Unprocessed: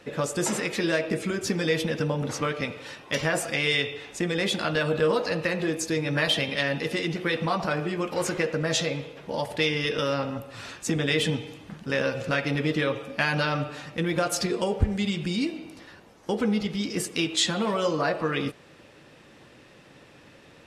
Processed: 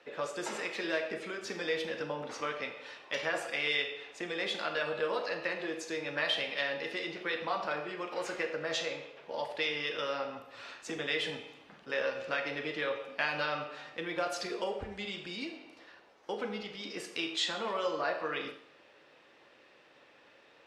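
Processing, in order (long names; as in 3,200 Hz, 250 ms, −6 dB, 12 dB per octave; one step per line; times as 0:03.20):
three-way crossover with the lows and the highs turned down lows −18 dB, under 360 Hz, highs −15 dB, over 5,300 Hz
four-comb reverb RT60 0.55 s, combs from 27 ms, DRR 7 dB
level −6.5 dB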